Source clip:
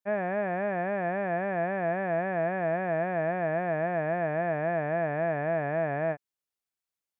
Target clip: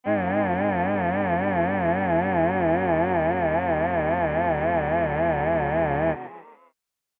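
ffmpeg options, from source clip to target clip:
-filter_complex "[0:a]asplit=5[a][b][c][d][e];[b]adelay=140,afreqshift=92,volume=-13.5dB[f];[c]adelay=280,afreqshift=184,volume=-20.2dB[g];[d]adelay=420,afreqshift=276,volume=-27dB[h];[e]adelay=560,afreqshift=368,volume=-33.7dB[i];[a][f][g][h][i]amix=inputs=5:normalize=0,asplit=3[j][k][l];[k]asetrate=22050,aresample=44100,atempo=2,volume=-5dB[m];[l]asetrate=55563,aresample=44100,atempo=0.793701,volume=-9dB[n];[j][m][n]amix=inputs=3:normalize=0,volume=4.5dB"

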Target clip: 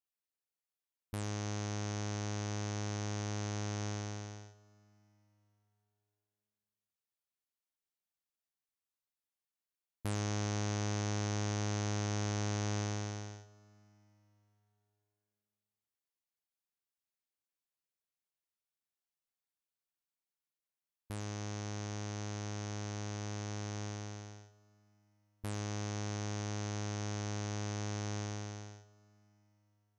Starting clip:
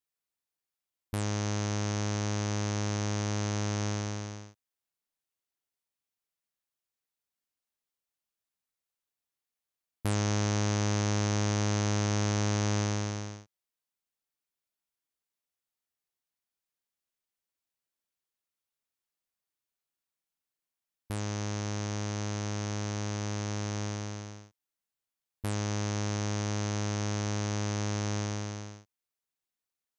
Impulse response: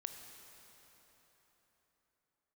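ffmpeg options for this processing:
-filter_complex "[0:a]asplit=2[a][b];[1:a]atrim=start_sample=2205,adelay=99[c];[b][c]afir=irnorm=-1:irlink=0,volume=-12.5dB[d];[a][d]amix=inputs=2:normalize=0,volume=-7dB"

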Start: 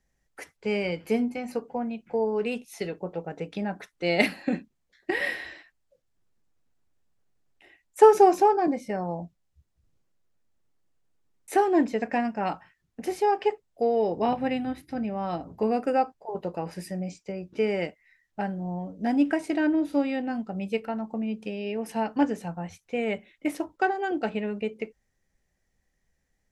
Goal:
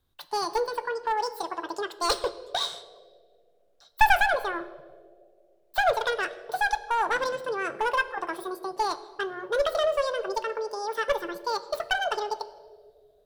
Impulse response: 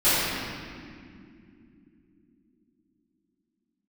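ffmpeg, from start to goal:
-filter_complex "[0:a]aeval=exprs='clip(val(0),-1,0.1)':c=same,bandreject=f=60:t=h:w=6,bandreject=f=120:t=h:w=6,bandreject=f=180:t=h:w=6,asplit=2[a][b];[1:a]atrim=start_sample=2205[c];[b][c]afir=irnorm=-1:irlink=0,volume=-32.5dB[d];[a][d]amix=inputs=2:normalize=0,asetrate=88200,aresample=44100"

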